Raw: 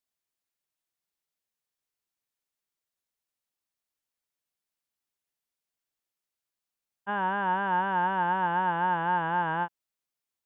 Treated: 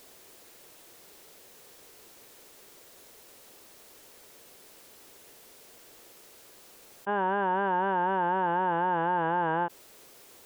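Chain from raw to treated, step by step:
parametric band 430 Hz +12 dB 1.3 octaves
envelope flattener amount 70%
level −5.5 dB

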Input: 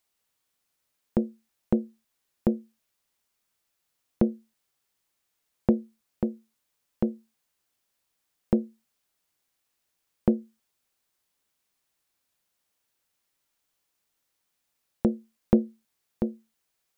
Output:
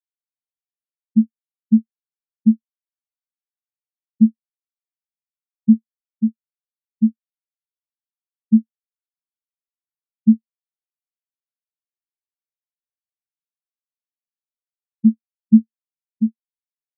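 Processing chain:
in parallel at −7.5 dB: centre clipping without the shift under −36 dBFS
on the sum: tilt shelving filter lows +9 dB, about 740 Hz
downward compressor 6 to 1, threshold −12 dBFS, peak gain reduction 8.5 dB
on a send at −13 dB: convolution reverb RT60 1.0 s, pre-delay 3 ms
on the sum: every bin expanded away from the loudest bin 4 to 1
level −2.5 dB

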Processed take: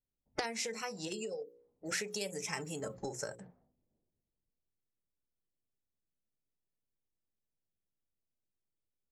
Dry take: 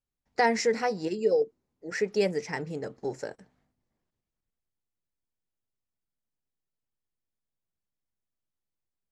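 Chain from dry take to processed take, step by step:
mains-hum notches 60/120/180/240/300/360/420/480/540 Hz
downward compressor 10 to 1, threshold −38 dBFS, peak gain reduction 18.5 dB
low-pass that shuts in the quiet parts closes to 380 Hz, open at −40.5 dBFS
parametric band 600 Hz +7 dB 1.6 octaves
noise reduction from a noise print of the clip's start 18 dB
high-shelf EQ 6,100 Hz +3.5 dB, from 0:01.12 +11 dB, from 0:02.80 +4 dB
every bin compressed towards the loudest bin 2 to 1
level +4.5 dB

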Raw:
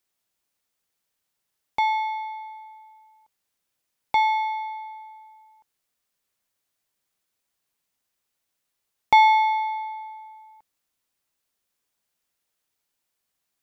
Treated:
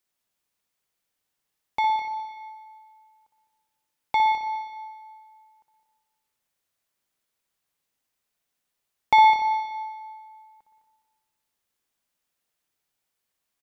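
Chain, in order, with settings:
0:01.87–0:02.29: notch filter 2,200 Hz, Q 5
on a send: repeating echo 208 ms, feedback 25%, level −11 dB
on the sum: spring reverb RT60 1.3 s, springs 58 ms, chirp 55 ms, DRR 4 dB
level −2 dB

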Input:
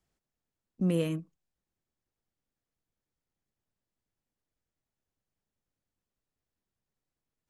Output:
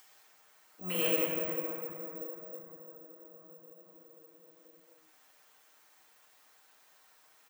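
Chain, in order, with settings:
high-pass filter 870 Hz 12 dB per octave
comb filter 6.5 ms, depth 85%
convolution reverb RT60 4.7 s, pre-delay 8 ms, DRR −8.5 dB
bad sample-rate conversion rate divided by 2×, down filtered, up zero stuff
upward compression, threshold −45 dBFS

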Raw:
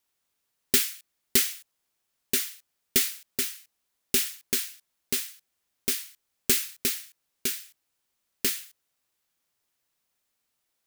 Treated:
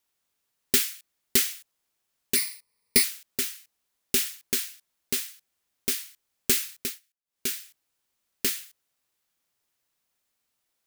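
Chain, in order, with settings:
0:02.35–0:03.04: EQ curve with evenly spaced ripples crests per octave 0.9, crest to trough 15 dB
0:06.75–0:07.49: duck −23.5 dB, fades 0.25 s

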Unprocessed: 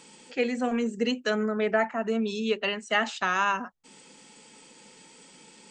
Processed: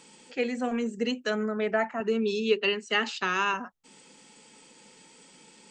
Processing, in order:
0:02.00–0:03.54: loudspeaker in its box 130–8,300 Hz, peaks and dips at 160 Hz +7 dB, 400 Hz +9 dB, 670 Hz −10 dB, 2,700 Hz +5 dB, 4,600 Hz +7 dB
level −2 dB

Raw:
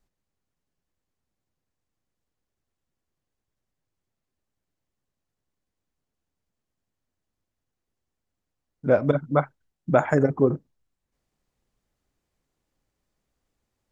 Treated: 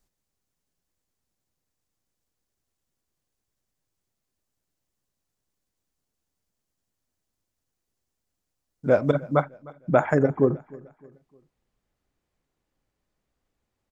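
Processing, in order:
bass and treble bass −1 dB, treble +7 dB, from 0:09.43 treble −4 dB
repeating echo 306 ms, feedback 40%, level −22.5 dB

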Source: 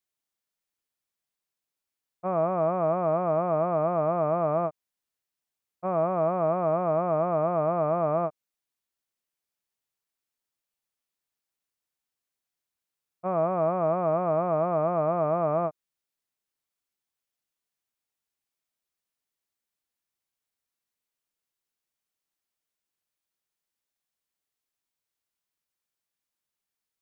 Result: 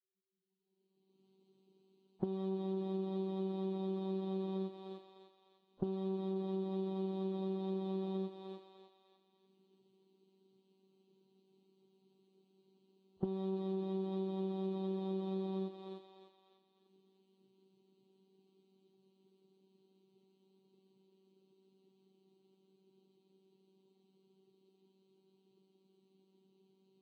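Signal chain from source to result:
adaptive Wiener filter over 25 samples
camcorder AGC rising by 24 dB per second
drawn EQ curve 130 Hz 0 dB, 250 Hz +7 dB, 420 Hz +8 dB, 590 Hz −23 dB, 840 Hz −4 dB, 1,400 Hz −23 dB, 2,300 Hz −25 dB, 3,600 Hz −1 dB, 5,400 Hz −22 dB
feedback echo with a high-pass in the loop 301 ms, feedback 47%, high-pass 600 Hz, level −9.5 dB
phases set to zero 191 Hz
high shelf with overshoot 1,500 Hz +7.5 dB, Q 1.5
downward compressor 5 to 1, threshold −36 dBFS, peak gain reduction 14 dB
level +1 dB
Ogg Vorbis 32 kbit/s 48,000 Hz

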